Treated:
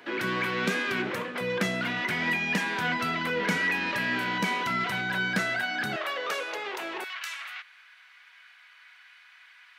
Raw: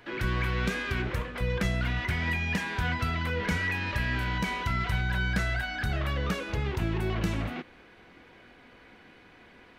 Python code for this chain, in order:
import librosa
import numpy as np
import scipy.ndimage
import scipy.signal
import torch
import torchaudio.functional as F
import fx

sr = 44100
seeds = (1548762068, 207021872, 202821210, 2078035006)

y = fx.highpass(x, sr, hz=fx.steps((0.0, 190.0), (5.96, 460.0), (7.04, 1300.0)), slope=24)
y = y * librosa.db_to_amplitude(4.0)